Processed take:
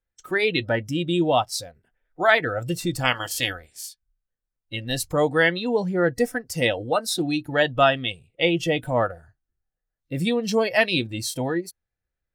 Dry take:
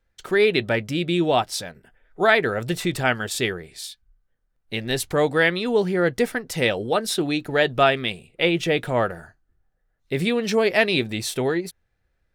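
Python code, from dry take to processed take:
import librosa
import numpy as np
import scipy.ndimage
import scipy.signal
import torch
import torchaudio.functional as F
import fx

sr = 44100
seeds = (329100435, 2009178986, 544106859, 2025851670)

y = fx.spec_clip(x, sr, under_db=17, at=(3.03, 3.88), fade=0.02)
y = fx.noise_reduce_blind(y, sr, reduce_db=14)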